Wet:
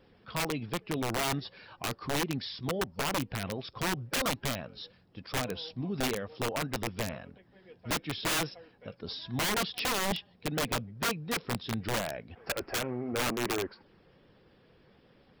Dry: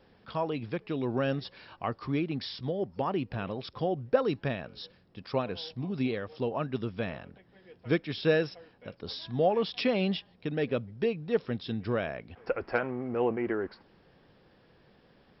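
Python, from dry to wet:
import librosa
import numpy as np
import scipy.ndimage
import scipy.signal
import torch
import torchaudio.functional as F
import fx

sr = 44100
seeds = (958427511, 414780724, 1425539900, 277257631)

y = fx.spec_quant(x, sr, step_db=15)
y = (np.mod(10.0 ** (24.5 / 20.0) * y + 1.0, 2.0) - 1.0) / 10.0 ** (24.5 / 20.0)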